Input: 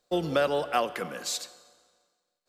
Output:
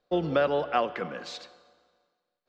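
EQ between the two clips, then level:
high-frequency loss of the air 220 metres
high-shelf EQ 12,000 Hz −8 dB
+1.5 dB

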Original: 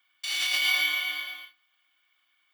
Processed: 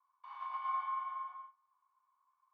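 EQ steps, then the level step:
flat-topped band-pass 1,000 Hz, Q 7.8
+15.5 dB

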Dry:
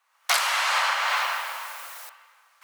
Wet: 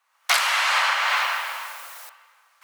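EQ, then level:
dynamic equaliser 2,300 Hz, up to +4 dB, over −38 dBFS, Q 0.72
0.0 dB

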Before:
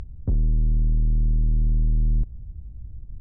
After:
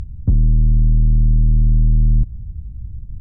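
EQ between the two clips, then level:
bass and treble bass +13 dB, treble +6 dB
low-shelf EQ 96 Hz −9 dB
parametric band 440 Hz −4.5 dB 0.48 octaves
+1.5 dB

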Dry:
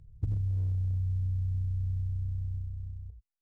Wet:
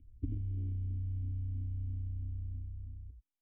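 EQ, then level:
formant resonators in series i
high-frequency loss of the air 92 metres
phaser with its sweep stopped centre 350 Hz, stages 4
+11.5 dB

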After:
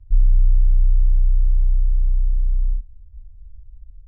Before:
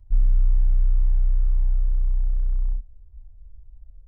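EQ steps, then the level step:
high-frequency loss of the air 170 metres
low shelf with overshoot 140 Hz +7 dB, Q 1.5
−3.5 dB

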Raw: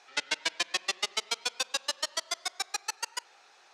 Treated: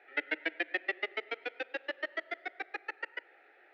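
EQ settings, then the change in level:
high-frequency loss of the air 62 metres
loudspeaker in its box 200–2,200 Hz, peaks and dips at 310 Hz +8 dB, 1,300 Hz +4 dB, 1,900 Hz +8 dB
phaser with its sweep stopped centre 440 Hz, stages 4
+3.0 dB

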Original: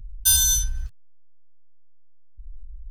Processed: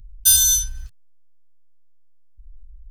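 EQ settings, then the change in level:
high-shelf EQ 2,100 Hz +8.5 dB
−4.0 dB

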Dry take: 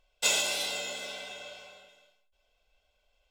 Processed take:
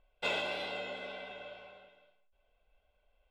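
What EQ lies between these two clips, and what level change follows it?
high-frequency loss of the air 460 metres
+1.5 dB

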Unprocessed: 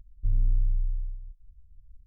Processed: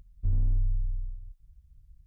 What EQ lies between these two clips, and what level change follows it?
high-pass filter 44 Hz 6 dB per octave
low-shelf EQ 120 Hz −5 dB
+7.0 dB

